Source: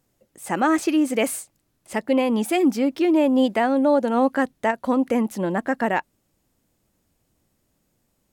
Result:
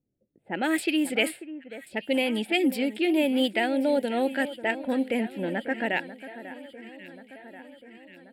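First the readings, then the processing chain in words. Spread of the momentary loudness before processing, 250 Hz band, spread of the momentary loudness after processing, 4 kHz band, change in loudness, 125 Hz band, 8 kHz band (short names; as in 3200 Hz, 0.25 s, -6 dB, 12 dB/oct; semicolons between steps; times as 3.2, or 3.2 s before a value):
7 LU, -6.0 dB, 19 LU, +4.0 dB, -5.0 dB, -7.5 dB, -7.0 dB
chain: low-pass opened by the level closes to 330 Hz, open at -15 dBFS; tilt +3 dB/oct; fixed phaser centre 2700 Hz, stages 4; on a send: echo with dull and thin repeats by turns 0.542 s, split 1900 Hz, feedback 75%, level -13.5 dB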